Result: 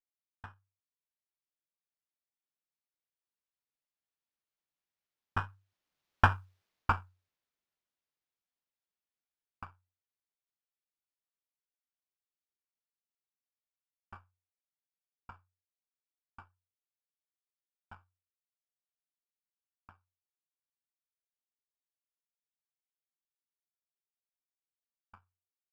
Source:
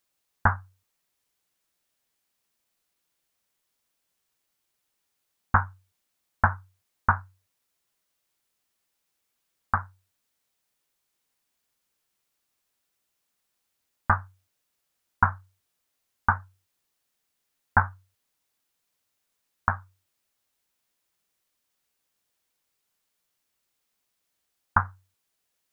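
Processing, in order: Doppler pass-by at 6.39, 11 m/s, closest 3.2 m; running maximum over 5 samples; gain -1 dB

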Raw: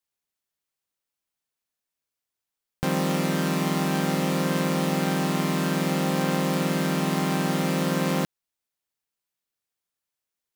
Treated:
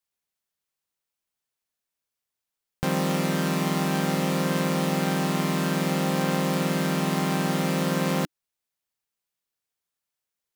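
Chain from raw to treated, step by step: bell 300 Hz -4 dB 0.22 oct

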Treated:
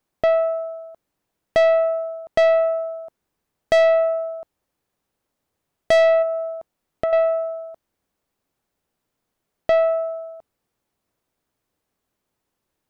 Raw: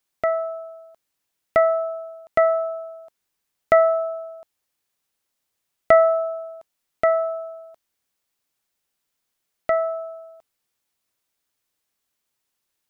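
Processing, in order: tilt shelf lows +8 dB, about 1300 Hz; 6.22–7.13 compressor 4:1, threshold -24 dBFS, peak gain reduction 11.5 dB; soft clip -15.5 dBFS, distortion -8 dB; gain +3.5 dB

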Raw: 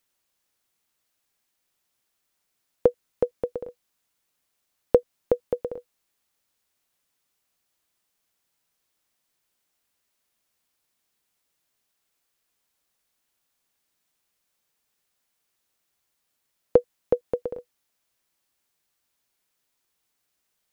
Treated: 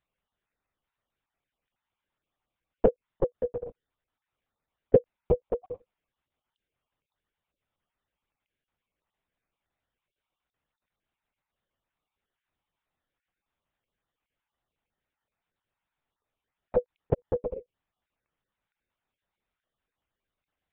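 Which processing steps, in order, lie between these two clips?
random spectral dropouts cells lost 24%; LPF 1700 Hz 6 dB/oct; LPC vocoder at 8 kHz whisper

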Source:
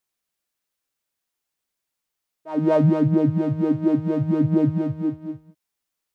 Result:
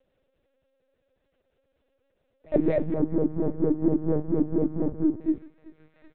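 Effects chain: median filter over 41 samples; graphic EQ 125/250/500/1000 Hz +8/-6/+10/-6 dB; gate -31 dBFS, range -32 dB; compressor 10:1, threshold -30 dBFS, peak gain reduction 20.5 dB; comb 3.7 ms, depth 88%; thinning echo 0.384 s, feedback 56%, high-pass 1100 Hz, level -12.5 dB; upward compressor, threshold -46 dBFS; LPC vocoder at 8 kHz pitch kept; 2.94–5.21 resonant high shelf 1700 Hz -13 dB, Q 1.5; gain +7 dB

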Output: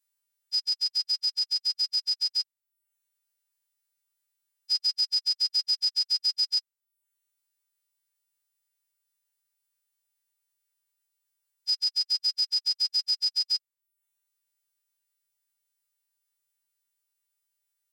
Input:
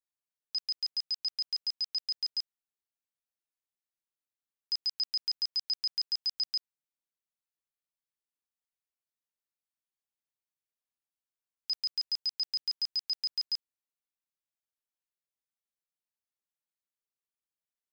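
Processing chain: frequency quantiser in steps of 2 st; reverb removal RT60 0.56 s; gain +3.5 dB

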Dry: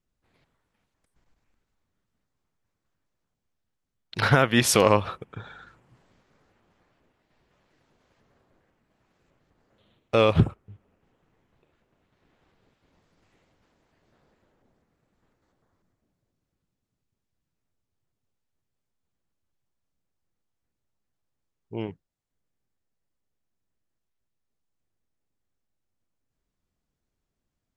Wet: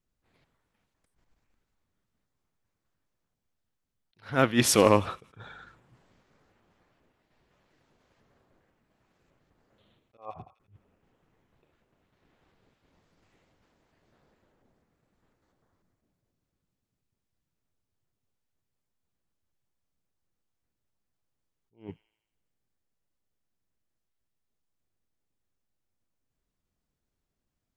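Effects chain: 10.17–10.6 vocal tract filter a; in parallel at -11.5 dB: hard clip -15 dBFS, distortion -9 dB; on the sum: dynamic EQ 280 Hz, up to +6 dB, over -34 dBFS, Q 1.8; on a send: thin delay 83 ms, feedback 56%, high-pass 1800 Hz, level -21 dB; on the sum: attack slew limiter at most 210 dB/s; gain -3.5 dB

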